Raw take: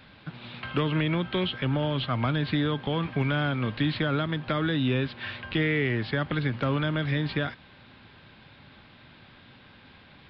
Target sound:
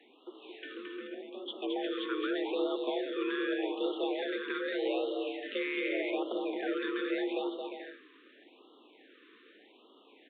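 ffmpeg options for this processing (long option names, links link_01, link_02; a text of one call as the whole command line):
ffmpeg -i in.wav -filter_complex "[0:a]asettb=1/sr,asplit=3[link_01][link_02][link_03];[link_01]atrim=end=0.744[link_04];[link_02]atrim=start=0.74:end=1.48,asetpts=PTS-STARTPTS,afade=type=in:duration=0.004:curve=qsin,afade=type=out:start_time=0.736:duration=0.004:curve=qsin,acrossover=split=120[link_05][link_06];[link_06]acompressor=threshold=-52dB:ratio=2[link_07];[link_05][link_07]amix=inputs=2:normalize=0[link_08];[link_03]atrim=start=1.476[link_09];[link_04][link_08]acrossfade=duration=0.004:curve1=hsin:curve2=qsin[link_10];[link_10][link_09]acrossfade=duration=0.004:curve1=qsin:curve2=hsin,afreqshift=200,asplit=2[link_11][link_12];[link_12]aecho=0:1:220|352|431.2|478.7|507.2:0.631|0.398|0.251|0.158|0.1[link_13];[link_11][link_13]amix=inputs=2:normalize=0,aresample=8000,aresample=44100,afftfilt=real='re*(1-between(b*sr/1024,690*pow(2000/690,0.5+0.5*sin(2*PI*0.83*pts/sr))/1.41,690*pow(2000/690,0.5+0.5*sin(2*PI*0.83*pts/sr))*1.41))':imag='im*(1-between(b*sr/1024,690*pow(2000/690,0.5+0.5*sin(2*PI*0.83*pts/sr))/1.41,690*pow(2000/690,0.5+0.5*sin(2*PI*0.83*pts/sr))*1.41))':win_size=1024:overlap=0.75,volume=-8dB" out.wav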